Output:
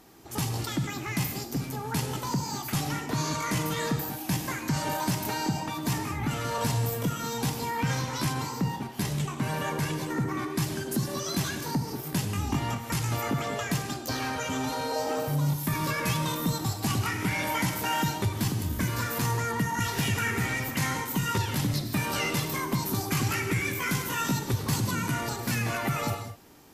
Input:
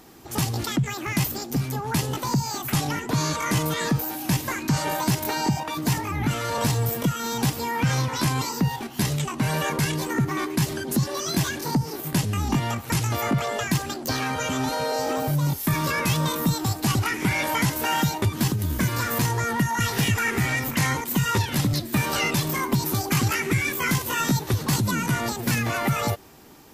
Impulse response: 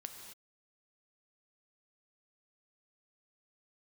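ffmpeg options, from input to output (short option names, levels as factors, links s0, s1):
-filter_complex "[1:a]atrim=start_sample=2205,afade=t=out:st=0.18:d=0.01,atrim=end_sample=8379,asetrate=27783,aresample=44100[s0];[0:a][s0]afir=irnorm=-1:irlink=0,asplit=3[s1][s2][s3];[s1]afade=t=out:st=8.32:d=0.02[s4];[s2]adynamicequalizer=threshold=0.00708:dfrequency=2200:dqfactor=0.7:tfrequency=2200:tqfactor=0.7:attack=5:release=100:ratio=0.375:range=2:mode=cutabove:tftype=highshelf,afade=t=in:st=8.32:d=0.02,afade=t=out:st=10.55:d=0.02[s5];[s3]afade=t=in:st=10.55:d=0.02[s6];[s4][s5][s6]amix=inputs=3:normalize=0,volume=0.708"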